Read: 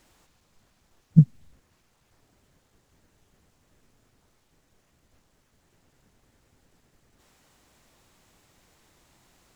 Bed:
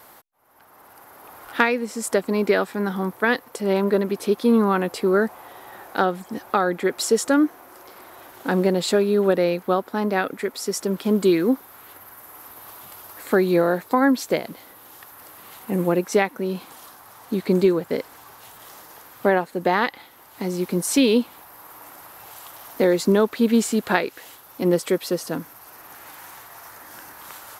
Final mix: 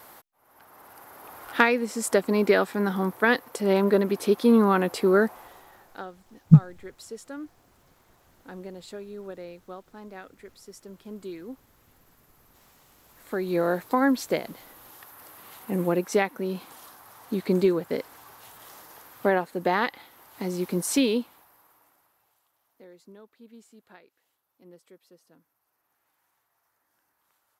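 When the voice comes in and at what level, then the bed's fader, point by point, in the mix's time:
5.35 s, +2.0 dB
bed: 0:05.24 −1 dB
0:06.13 −20.5 dB
0:12.97 −20.5 dB
0:13.69 −4 dB
0:20.96 −4 dB
0:22.49 −32 dB

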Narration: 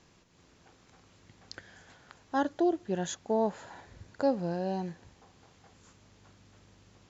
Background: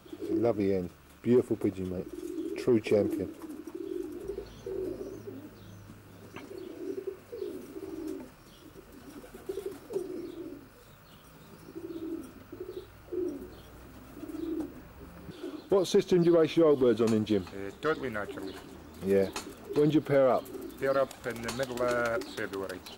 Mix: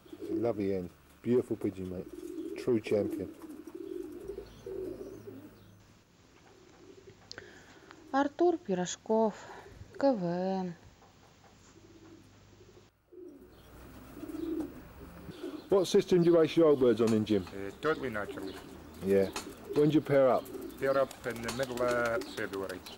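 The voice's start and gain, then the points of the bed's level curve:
5.80 s, 0.0 dB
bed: 0:05.51 −4 dB
0:06.18 −18 dB
0:13.15 −18 dB
0:13.80 −1 dB

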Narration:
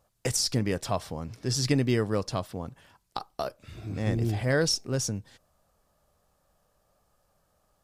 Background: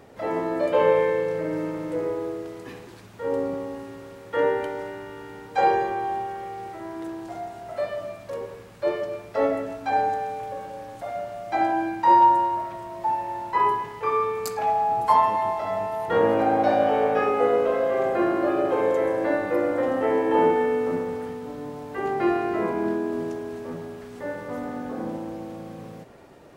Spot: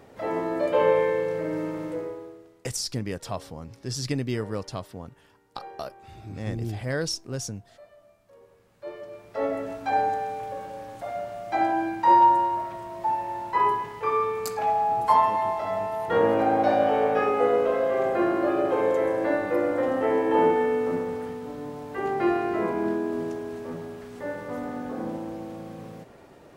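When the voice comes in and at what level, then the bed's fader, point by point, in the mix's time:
2.40 s, −3.5 dB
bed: 0:01.86 −1.5 dB
0:02.70 −23 dB
0:08.24 −23 dB
0:09.70 −1 dB

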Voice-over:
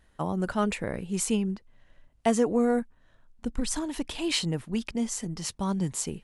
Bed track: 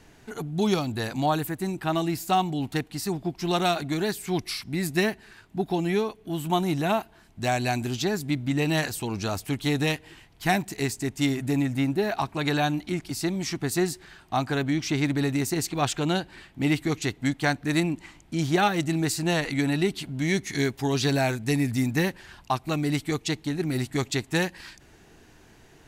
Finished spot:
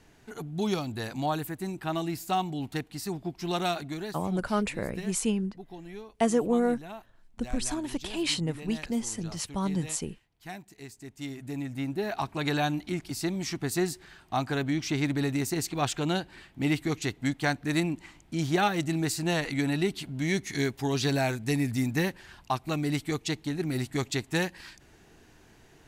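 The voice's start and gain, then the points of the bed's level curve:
3.95 s, −1.0 dB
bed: 0:03.75 −5 dB
0:04.54 −18 dB
0:10.80 −18 dB
0:12.29 −3 dB

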